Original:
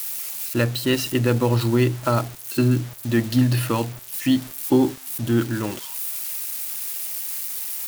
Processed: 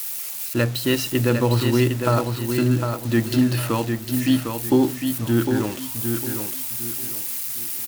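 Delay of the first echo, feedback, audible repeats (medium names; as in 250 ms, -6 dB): 755 ms, 30%, 3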